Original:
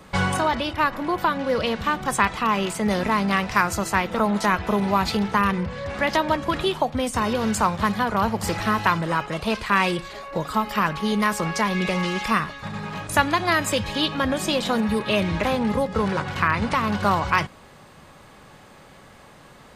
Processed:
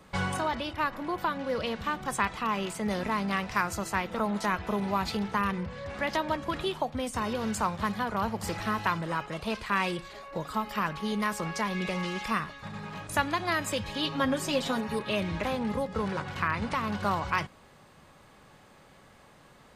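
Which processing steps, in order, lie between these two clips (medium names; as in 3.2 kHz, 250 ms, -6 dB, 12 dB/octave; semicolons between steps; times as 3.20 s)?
14.04–14.99 s: comb 7.4 ms, depth 80%; trim -8 dB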